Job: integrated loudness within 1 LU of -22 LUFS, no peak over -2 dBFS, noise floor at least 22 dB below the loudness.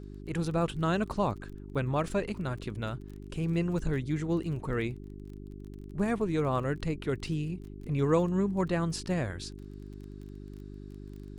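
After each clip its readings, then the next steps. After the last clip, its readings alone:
tick rate 25 per s; hum 50 Hz; highest harmonic 400 Hz; hum level -42 dBFS; loudness -31.5 LUFS; peak level -14.5 dBFS; loudness target -22.0 LUFS
-> de-click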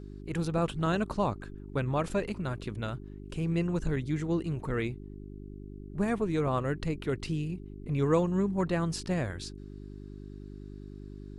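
tick rate 0 per s; hum 50 Hz; highest harmonic 400 Hz; hum level -42 dBFS
-> de-hum 50 Hz, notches 8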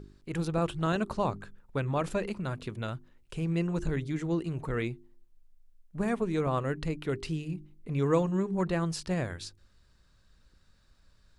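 hum not found; loudness -32.0 LUFS; peak level -15.5 dBFS; loudness target -22.0 LUFS
-> trim +10 dB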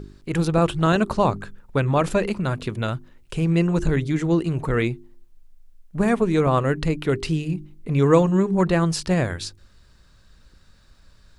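loudness -22.0 LUFS; peak level -5.5 dBFS; noise floor -54 dBFS

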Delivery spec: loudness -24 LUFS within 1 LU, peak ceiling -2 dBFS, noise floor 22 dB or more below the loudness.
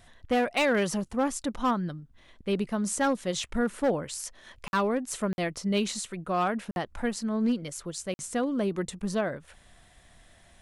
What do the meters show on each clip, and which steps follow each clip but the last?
clipped samples 0.9%; clipping level -19.5 dBFS; dropouts 4; longest dropout 51 ms; loudness -29.5 LUFS; peak level -19.5 dBFS; loudness target -24.0 LUFS
-> clip repair -19.5 dBFS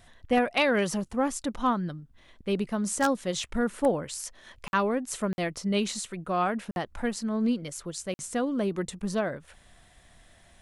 clipped samples 0.0%; dropouts 4; longest dropout 51 ms
-> interpolate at 4.68/5.33/6.71/8.14 s, 51 ms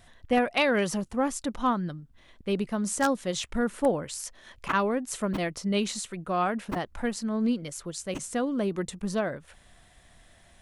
dropouts 0; loudness -29.0 LUFS; peak level -10.5 dBFS; loudness target -24.0 LUFS
-> trim +5 dB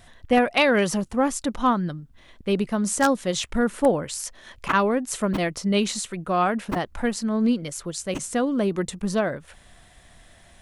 loudness -24.0 LUFS; peak level -5.5 dBFS; noise floor -53 dBFS

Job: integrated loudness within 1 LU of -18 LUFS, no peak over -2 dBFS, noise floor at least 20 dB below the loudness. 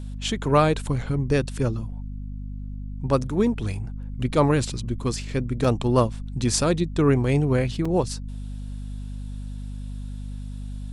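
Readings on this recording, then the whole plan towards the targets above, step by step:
dropouts 2; longest dropout 4.1 ms; hum 50 Hz; highest harmonic 250 Hz; hum level -30 dBFS; loudness -24.0 LUFS; peak level -6.5 dBFS; loudness target -18.0 LUFS
-> interpolate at 5.64/7.85 s, 4.1 ms; hum notches 50/100/150/200/250 Hz; trim +6 dB; peak limiter -2 dBFS

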